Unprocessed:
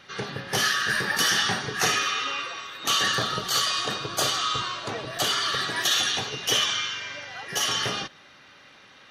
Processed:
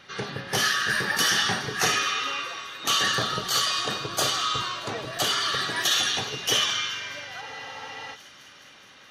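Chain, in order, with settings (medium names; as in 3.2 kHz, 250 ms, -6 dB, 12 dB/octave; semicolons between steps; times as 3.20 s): feedback echo behind a high-pass 210 ms, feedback 77%, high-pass 1.9 kHz, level -23 dB; spectral freeze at 7.43 s, 0.70 s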